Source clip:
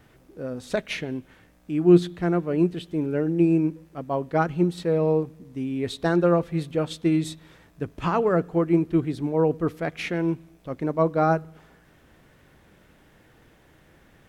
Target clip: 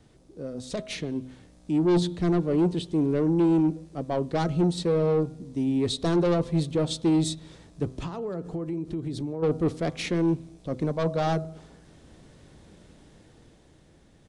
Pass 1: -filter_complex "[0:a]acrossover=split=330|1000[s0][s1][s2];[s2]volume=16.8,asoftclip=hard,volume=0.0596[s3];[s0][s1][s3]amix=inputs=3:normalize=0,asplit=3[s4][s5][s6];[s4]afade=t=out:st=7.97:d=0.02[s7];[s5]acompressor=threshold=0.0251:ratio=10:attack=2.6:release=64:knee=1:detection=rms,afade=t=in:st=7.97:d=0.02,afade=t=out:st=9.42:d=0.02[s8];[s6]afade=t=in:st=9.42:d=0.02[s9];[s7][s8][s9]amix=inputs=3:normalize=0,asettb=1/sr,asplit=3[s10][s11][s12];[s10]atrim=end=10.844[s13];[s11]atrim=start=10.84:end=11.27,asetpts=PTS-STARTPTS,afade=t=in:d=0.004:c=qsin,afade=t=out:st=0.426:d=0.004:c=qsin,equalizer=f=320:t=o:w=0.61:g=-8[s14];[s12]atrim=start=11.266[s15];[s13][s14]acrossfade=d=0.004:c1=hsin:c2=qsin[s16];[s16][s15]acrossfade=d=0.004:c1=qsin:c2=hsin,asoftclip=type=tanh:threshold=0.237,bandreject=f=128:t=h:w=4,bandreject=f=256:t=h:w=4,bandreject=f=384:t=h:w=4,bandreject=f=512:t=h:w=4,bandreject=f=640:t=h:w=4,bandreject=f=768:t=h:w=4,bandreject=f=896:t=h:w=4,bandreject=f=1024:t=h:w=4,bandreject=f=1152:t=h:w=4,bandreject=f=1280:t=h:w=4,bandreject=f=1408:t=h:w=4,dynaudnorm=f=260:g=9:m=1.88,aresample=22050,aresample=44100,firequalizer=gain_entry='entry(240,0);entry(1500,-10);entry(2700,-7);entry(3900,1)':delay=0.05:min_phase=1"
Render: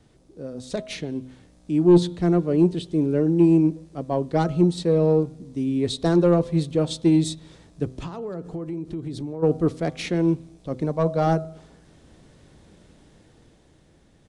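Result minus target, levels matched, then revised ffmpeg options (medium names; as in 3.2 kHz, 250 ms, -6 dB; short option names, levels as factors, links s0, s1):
saturation: distortion -8 dB
-filter_complex "[0:a]acrossover=split=330|1000[s0][s1][s2];[s2]volume=16.8,asoftclip=hard,volume=0.0596[s3];[s0][s1][s3]amix=inputs=3:normalize=0,asplit=3[s4][s5][s6];[s4]afade=t=out:st=7.97:d=0.02[s7];[s5]acompressor=threshold=0.0251:ratio=10:attack=2.6:release=64:knee=1:detection=rms,afade=t=in:st=7.97:d=0.02,afade=t=out:st=9.42:d=0.02[s8];[s6]afade=t=in:st=9.42:d=0.02[s9];[s7][s8][s9]amix=inputs=3:normalize=0,asettb=1/sr,asplit=3[s10][s11][s12];[s10]atrim=end=10.844[s13];[s11]atrim=start=10.84:end=11.27,asetpts=PTS-STARTPTS,afade=t=in:d=0.004:c=qsin,afade=t=out:st=0.426:d=0.004:c=qsin,equalizer=f=320:t=o:w=0.61:g=-8[s14];[s12]atrim=start=11.266[s15];[s13][s14]acrossfade=d=0.004:c1=hsin:c2=qsin[s16];[s16][s15]acrossfade=d=0.004:c1=qsin:c2=hsin,asoftclip=type=tanh:threshold=0.075,bandreject=f=128:t=h:w=4,bandreject=f=256:t=h:w=4,bandreject=f=384:t=h:w=4,bandreject=f=512:t=h:w=4,bandreject=f=640:t=h:w=4,bandreject=f=768:t=h:w=4,bandreject=f=896:t=h:w=4,bandreject=f=1024:t=h:w=4,bandreject=f=1152:t=h:w=4,bandreject=f=1280:t=h:w=4,bandreject=f=1408:t=h:w=4,dynaudnorm=f=260:g=9:m=1.88,aresample=22050,aresample=44100,firequalizer=gain_entry='entry(240,0);entry(1500,-10);entry(2700,-7);entry(3900,1)':delay=0.05:min_phase=1"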